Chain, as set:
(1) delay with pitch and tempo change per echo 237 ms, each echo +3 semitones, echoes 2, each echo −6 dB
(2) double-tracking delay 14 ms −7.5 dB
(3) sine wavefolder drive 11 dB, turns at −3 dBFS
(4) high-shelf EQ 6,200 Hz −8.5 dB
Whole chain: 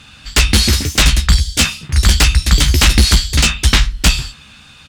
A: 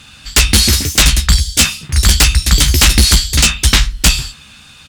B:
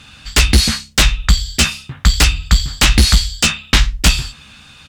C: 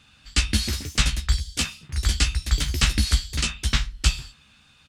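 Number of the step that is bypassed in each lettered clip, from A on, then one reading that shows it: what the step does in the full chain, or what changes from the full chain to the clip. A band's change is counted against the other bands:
4, 8 kHz band +5.0 dB
1, change in momentary loudness spread +1 LU
3, distortion level −5 dB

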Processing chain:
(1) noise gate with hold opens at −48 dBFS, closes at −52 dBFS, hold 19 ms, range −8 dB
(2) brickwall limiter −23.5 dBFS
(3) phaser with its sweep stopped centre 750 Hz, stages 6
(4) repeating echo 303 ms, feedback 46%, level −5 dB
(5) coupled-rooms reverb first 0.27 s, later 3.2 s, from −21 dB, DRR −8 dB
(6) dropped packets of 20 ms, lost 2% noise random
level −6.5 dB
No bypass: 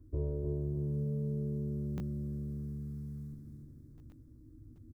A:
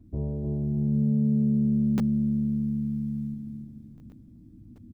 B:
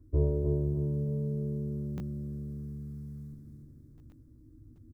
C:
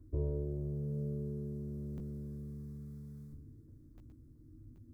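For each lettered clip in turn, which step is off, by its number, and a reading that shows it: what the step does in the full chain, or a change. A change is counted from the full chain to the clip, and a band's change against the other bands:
3, change in momentary loudness spread −8 LU
2, change in crest factor +4.5 dB
4, change in crest factor +3.0 dB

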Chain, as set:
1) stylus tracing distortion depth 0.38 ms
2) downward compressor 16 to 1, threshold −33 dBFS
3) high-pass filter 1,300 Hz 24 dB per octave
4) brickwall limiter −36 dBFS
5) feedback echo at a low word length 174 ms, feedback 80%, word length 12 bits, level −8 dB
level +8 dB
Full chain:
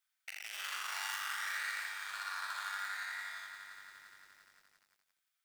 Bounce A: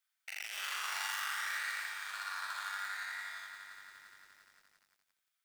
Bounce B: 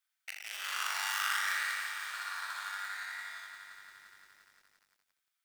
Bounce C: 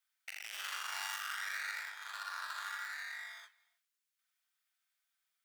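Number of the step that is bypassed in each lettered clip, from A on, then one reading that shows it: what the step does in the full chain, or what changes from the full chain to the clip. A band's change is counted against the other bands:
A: 2, average gain reduction 4.0 dB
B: 4, average gain reduction 2.0 dB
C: 5, change in momentary loudness spread −6 LU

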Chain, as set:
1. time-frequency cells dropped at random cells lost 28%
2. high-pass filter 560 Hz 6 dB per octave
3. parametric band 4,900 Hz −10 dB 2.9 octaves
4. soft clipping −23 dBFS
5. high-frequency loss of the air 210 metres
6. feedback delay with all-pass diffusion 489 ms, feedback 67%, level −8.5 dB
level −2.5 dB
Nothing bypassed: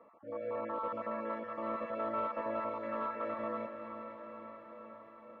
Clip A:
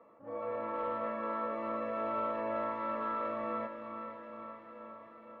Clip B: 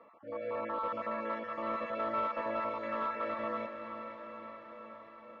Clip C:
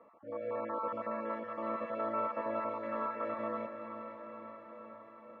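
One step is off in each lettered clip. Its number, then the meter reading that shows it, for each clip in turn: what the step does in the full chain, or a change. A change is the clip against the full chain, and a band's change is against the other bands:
1, change in integrated loudness +2.0 LU
3, 2 kHz band +5.0 dB
4, distortion level −24 dB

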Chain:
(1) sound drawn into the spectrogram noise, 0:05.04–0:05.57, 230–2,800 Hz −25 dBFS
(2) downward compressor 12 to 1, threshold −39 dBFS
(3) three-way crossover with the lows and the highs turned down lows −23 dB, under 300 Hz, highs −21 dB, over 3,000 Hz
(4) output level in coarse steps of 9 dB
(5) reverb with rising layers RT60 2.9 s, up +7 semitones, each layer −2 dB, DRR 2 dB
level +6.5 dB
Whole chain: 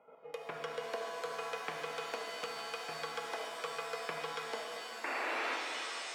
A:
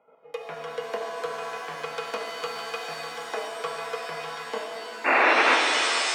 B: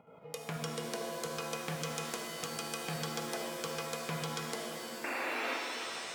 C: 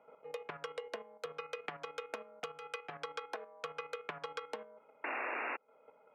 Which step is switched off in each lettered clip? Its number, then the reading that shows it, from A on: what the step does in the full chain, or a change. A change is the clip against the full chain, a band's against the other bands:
2, average gain reduction 6.5 dB
3, 125 Hz band +16.0 dB
5, 8 kHz band −8.5 dB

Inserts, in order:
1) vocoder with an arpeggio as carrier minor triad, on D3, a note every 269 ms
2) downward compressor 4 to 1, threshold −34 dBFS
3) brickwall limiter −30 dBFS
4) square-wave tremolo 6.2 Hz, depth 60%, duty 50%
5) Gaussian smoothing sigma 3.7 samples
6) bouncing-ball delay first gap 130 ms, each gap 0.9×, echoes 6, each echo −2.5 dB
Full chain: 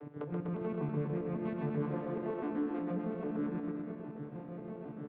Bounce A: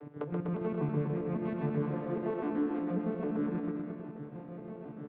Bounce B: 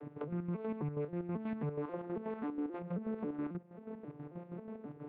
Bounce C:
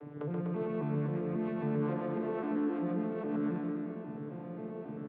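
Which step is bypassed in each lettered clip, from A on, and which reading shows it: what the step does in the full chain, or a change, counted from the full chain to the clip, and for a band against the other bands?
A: 3, average gain reduction 1.5 dB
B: 6, change in integrated loudness −3.5 LU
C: 4, change in integrated loudness +2.5 LU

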